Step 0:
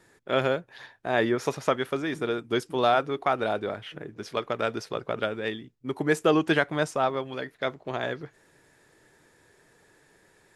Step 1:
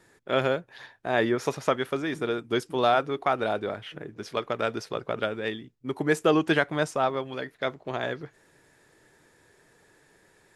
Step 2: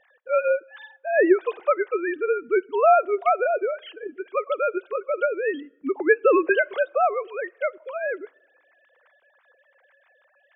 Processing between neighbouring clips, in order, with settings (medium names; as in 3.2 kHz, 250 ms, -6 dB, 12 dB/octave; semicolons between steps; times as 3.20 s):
no audible change
formants replaced by sine waves; on a send at -23.5 dB: reverberation RT60 1.2 s, pre-delay 5 ms; on the sum: trim +4.5 dB